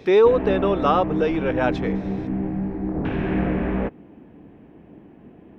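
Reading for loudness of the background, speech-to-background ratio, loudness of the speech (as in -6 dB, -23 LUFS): -26.0 LUFS, 5.5 dB, -20.5 LUFS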